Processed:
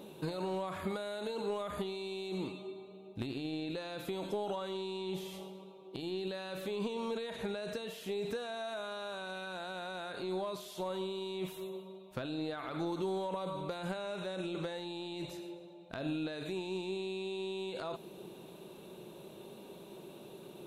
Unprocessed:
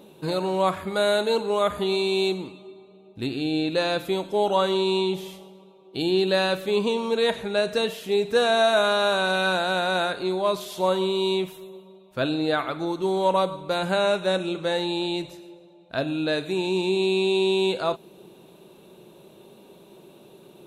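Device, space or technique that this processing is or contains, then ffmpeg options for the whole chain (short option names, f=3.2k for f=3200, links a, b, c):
de-esser from a sidechain: -filter_complex "[0:a]asplit=2[a][b];[b]highpass=f=4.3k:p=1,apad=whole_len=911129[c];[a][c]sidechaincompress=threshold=-50dB:ratio=8:attack=4.4:release=27,volume=-1dB"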